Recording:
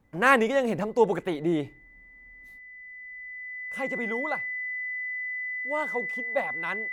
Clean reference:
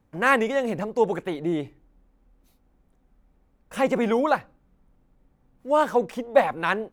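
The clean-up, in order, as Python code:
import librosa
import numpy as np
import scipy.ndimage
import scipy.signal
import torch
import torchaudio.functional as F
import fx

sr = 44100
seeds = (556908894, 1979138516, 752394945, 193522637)

y = fx.notch(x, sr, hz=2000.0, q=30.0)
y = fx.gain(y, sr, db=fx.steps((0.0, 0.0), (2.59, 10.5)))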